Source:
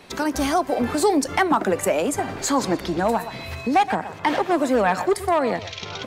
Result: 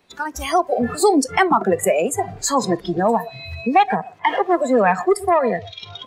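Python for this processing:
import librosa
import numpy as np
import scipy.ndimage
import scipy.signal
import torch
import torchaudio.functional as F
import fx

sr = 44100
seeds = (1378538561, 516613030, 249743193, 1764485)

y = fx.noise_reduce_blind(x, sr, reduce_db=18)
y = F.gain(torch.from_numpy(y), 4.0).numpy()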